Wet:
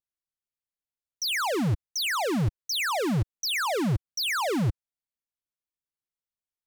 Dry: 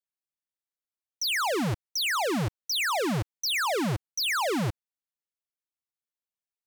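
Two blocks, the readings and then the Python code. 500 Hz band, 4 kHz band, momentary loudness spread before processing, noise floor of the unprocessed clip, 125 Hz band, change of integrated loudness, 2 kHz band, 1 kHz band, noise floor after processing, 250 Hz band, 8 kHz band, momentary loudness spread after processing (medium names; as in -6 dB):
0.0 dB, -0.5 dB, 5 LU, under -85 dBFS, +4.0 dB, +0.5 dB, -0.5 dB, -0.5 dB, under -85 dBFS, +2.0 dB, -0.5 dB, 3 LU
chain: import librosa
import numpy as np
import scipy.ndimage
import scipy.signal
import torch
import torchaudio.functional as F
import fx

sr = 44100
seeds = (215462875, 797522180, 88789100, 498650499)

y = fx.low_shelf(x, sr, hz=170.0, db=11.5)
y = fx.leveller(y, sr, passes=1)
y = fx.vibrato(y, sr, rate_hz=1.6, depth_cents=49.0)
y = y * librosa.db_to_amplitude(-4.0)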